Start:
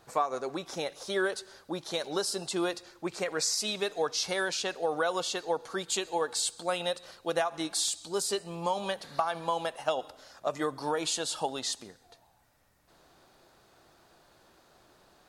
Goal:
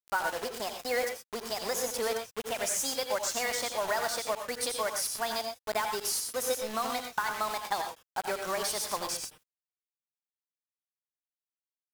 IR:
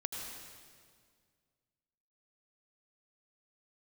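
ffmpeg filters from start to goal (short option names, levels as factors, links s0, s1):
-filter_complex "[0:a]acrusher=bits=5:mix=0:aa=0.000001,asetrate=56448,aresample=44100[s0];[1:a]atrim=start_sample=2205,afade=t=out:st=0.18:d=0.01,atrim=end_sample=8379[s1];[s0][s1]afir=irnorm=-1:irlink=0"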